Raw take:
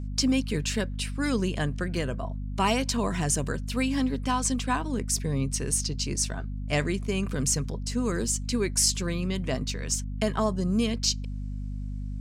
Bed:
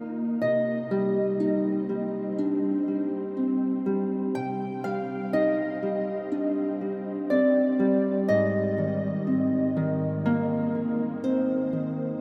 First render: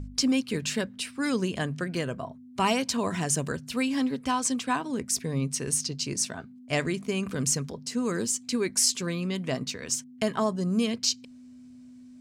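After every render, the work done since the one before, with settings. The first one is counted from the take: de-hum 50 Hz, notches 4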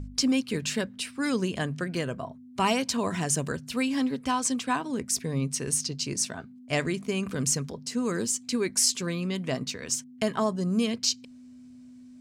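nothing audible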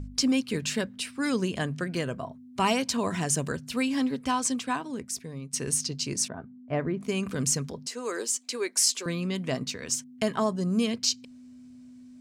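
4.42–5.53 fade out, to -14 dB; 6.28–7.01 LPF 1200 Hz; 7.87–9.06 HPF 360 Hz 24 dB/oct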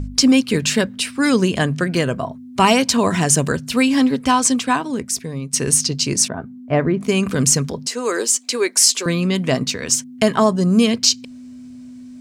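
gain +11.5 dB; limiter -2 dBFS, peak gain reduction 2.5 dB

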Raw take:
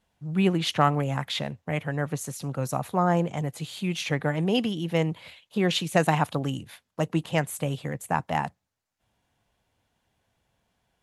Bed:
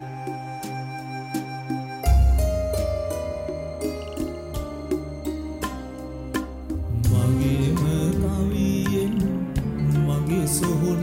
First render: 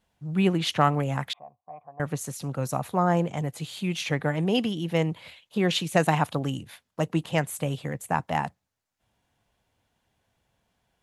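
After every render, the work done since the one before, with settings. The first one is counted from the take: 1.33–2 vocal tract filter a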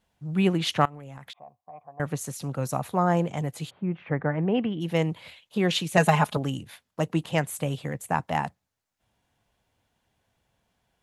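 0.85–1.75 compressor 8:1, threshold -39 dBFS; 3.69–4.8 LPF 1300 Hz -> 2700 Hz 24 dB/oct; 5.97–6.37 comb 4.8 ms, depth 92%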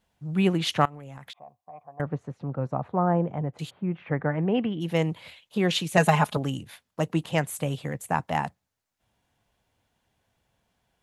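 2.01–3.59 LPF 1200 Hz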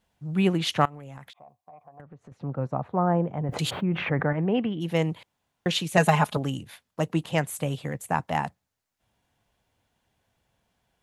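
1.27–2.32 compressor, threshold -44 dBFS; 3.49–4.33 fast leveller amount 70%; 5.23–5.66 room tone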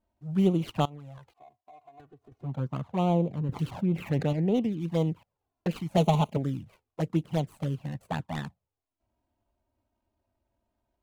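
median filter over 25 samples; envelope flanger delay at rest 3.2 ms, full sweep at -21 dBFS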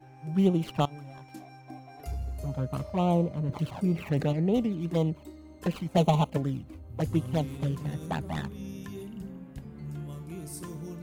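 add bed -17.5 dB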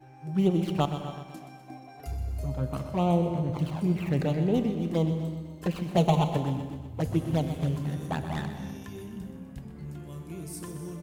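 feedback echo 0.125 s, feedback 56%, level -11 dB; non-linear reverb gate 0.34 s flat, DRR 10 dB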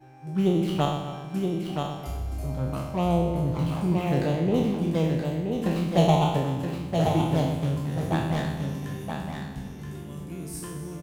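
spectral trails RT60 0.82 s; on a send: echo 0.974 s -5 dB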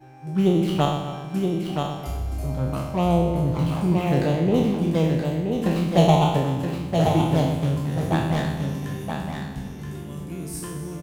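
gain +3.5 dB

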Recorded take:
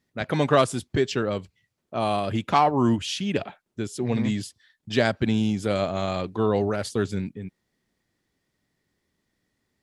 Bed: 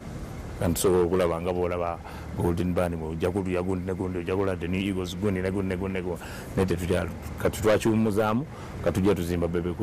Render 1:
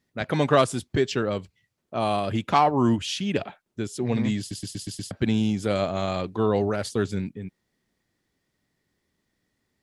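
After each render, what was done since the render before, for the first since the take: 4.39 stutter in place 0.12 s, 6 plays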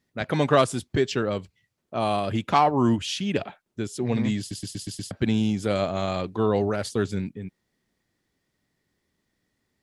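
nothing audible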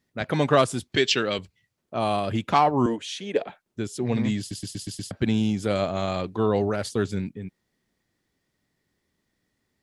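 0.92–1.39 weighting filter D; 2.86–3.47 speaker cabinet 350–9700 Hz, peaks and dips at 470 Hz +10 dB, 1300 Hz -6 dB, 2800 Hz -7 dB, 5000 Hz -8 dB, 7400 Hz -4 dB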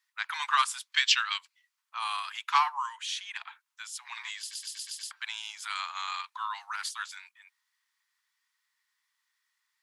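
steep high-pass 930 Hz 72 dB/oct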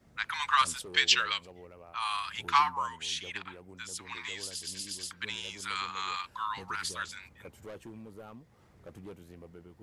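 add bed -24 dB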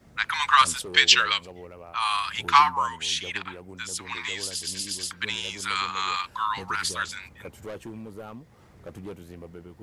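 gain +7.5 dB; limiter -2 dBFS, peak gain reduction 1 dB

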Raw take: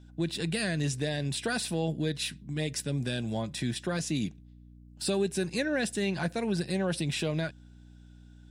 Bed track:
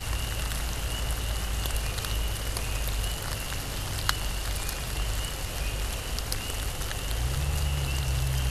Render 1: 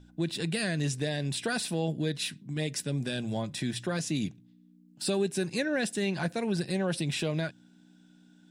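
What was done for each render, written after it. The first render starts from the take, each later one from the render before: de-hum 60 Hz, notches 2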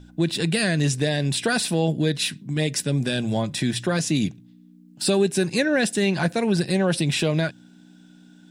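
gain +8.5 dB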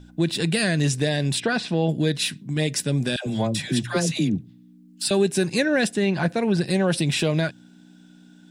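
1.4–1.89 air absorption 150 m; 3.16–5.11 dispersion lows, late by 0.102 s, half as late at 710 Hz; 5.87–6.63 high shelf 3600 Hz -> 6200 Hz -10.5 dB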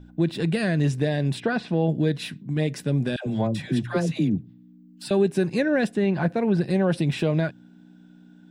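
bell 8300 Hz -15 dB 2.7 oct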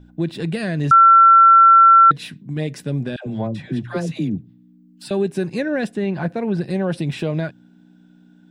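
0.91–2.11 bleep 1350 Hz -6 dBFS; 3–3.86 LPF 4200 Hz -> 2200 Hz 6 dB/oct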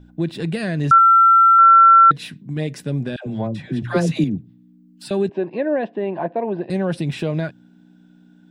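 0.98–1.59 air absorption 330 m; 3.82–4.24 gain +5.5 dB; 5.29–6.7 speaker cabinet 290–2800 Hz, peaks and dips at 340 Hz +4 dB, 650 Hz +8 dB, 970 Hz +7 dB, 1400 Hz -10 dB, 2200 Hz -6 dB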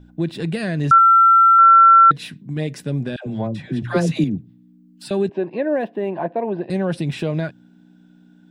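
5.7–6.14 median filter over 5 samples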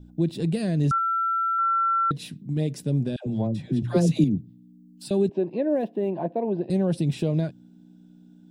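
bell 1600 Hz -14.5 dB 1.9 oct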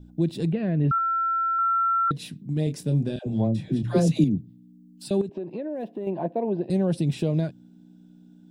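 0.52–2.08 LPF 2600 Hz 24 dB/oct; 2.64–4.08 doubler 27 ms -7.5 dB; 5.21–6.07 compressor, threshold -28 dBFS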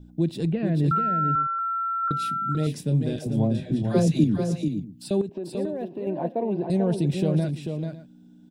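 tapped delay 0.441/0.556 s -6/-17.5 dB

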